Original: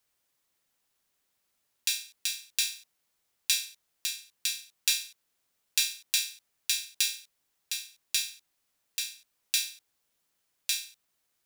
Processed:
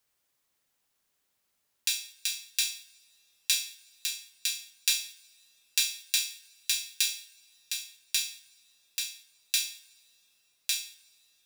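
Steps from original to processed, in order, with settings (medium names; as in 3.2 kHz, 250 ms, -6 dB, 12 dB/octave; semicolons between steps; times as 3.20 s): two-slope reverb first 0.67 s, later 3.2 s, from -18 dB, DRR 13 dB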